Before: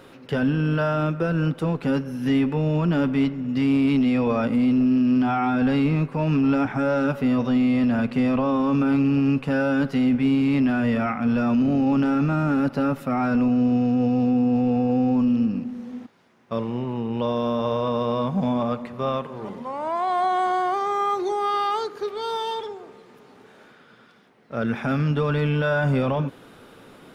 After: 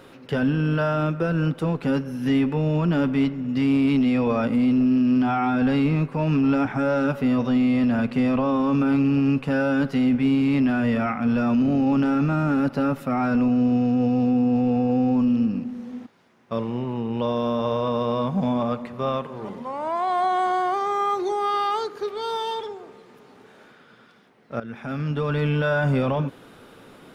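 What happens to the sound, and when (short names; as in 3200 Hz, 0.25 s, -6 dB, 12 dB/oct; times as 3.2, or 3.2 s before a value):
24.6–25.48 fade in linear, from -14.5 dB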